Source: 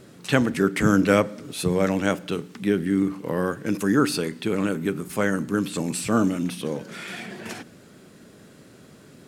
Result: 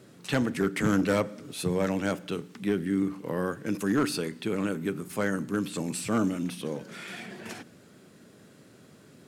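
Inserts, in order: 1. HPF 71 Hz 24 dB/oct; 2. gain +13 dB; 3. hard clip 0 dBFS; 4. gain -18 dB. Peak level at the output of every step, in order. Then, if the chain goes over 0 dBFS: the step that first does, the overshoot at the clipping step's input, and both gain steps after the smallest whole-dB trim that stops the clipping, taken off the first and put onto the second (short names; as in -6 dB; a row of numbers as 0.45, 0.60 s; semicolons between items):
-4.0, +9.0, 0.0, -18.0 dBFS; step 2, 9.0 dB; step 2 +4 dB, step 4 -9 dB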